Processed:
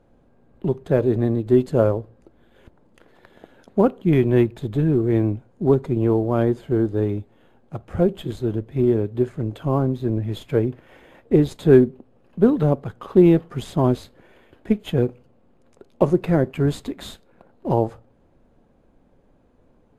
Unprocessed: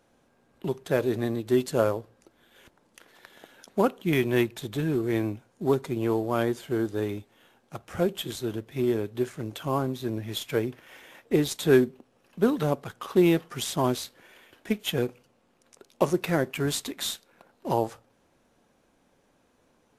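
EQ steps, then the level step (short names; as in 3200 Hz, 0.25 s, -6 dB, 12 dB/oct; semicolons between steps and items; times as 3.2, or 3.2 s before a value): tilt -3.5 dB/oct; bell 550 Hz +2.5 dB 1.4 oct; notch 5700 Hz, Q 9.4; 0.0 dB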